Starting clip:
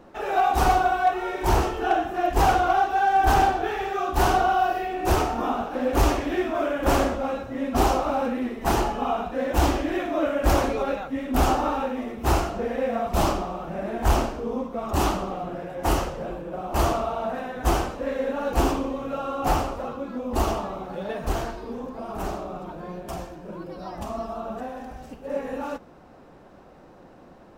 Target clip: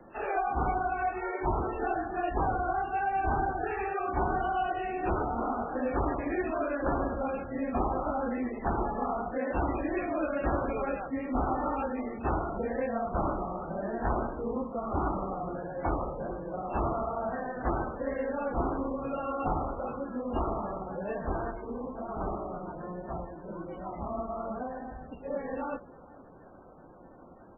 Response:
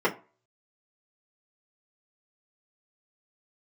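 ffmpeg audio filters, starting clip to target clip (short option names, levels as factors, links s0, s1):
-filter_complex "[0:a]acrossover=split=120|280|1100|3200[s0][s1][s2][s3][s4];[s0]acompressor=threshold=0.0316:ratio=4[s5];[s1]acompressor=threshold=0.0224:ratio=4[s6];[s2]acompressor=threshold=0.0398:ratio=4[s7];[s3]acompressor=threshold=0.02:ratio=4[s8];[s4]acompressor=threshold=0.00316:ratio=4[s9];[s5][s6][s7][s8][s9]amix=inputs=5:normalize=0,asplit=2[s10][s11];[s11]adelay=447,lowpass=f=1800:p=1,volume=0.0944,asplit=2[s12][s13];[s13]adelay=447,lowpass=f=1800:p=1,volume=0.23[s14];[s10][s12][s14]amix=inputs=3:normalize=0,volume=0.708" -ar 16000 -c:a libmp3lame -b:a 8k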